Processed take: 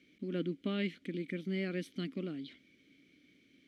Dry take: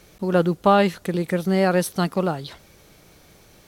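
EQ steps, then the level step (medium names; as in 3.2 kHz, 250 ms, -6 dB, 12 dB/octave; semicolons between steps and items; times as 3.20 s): vowel filter i; 0.0 dB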